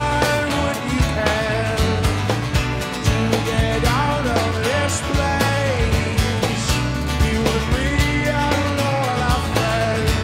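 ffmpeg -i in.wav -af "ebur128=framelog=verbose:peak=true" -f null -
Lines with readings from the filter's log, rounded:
Integrated loudness:
  I:         -19.3 LUFS
  Threshold: -29.3 LUFS
Loudness range:
  LRA:         0.8 LU
  Threshold: -39.3 LUFS
  LRA low:   -19.7 LUFS
  LRA high:  -18.9 LUFS
True peak:
  Peak:       -3.9 dBFS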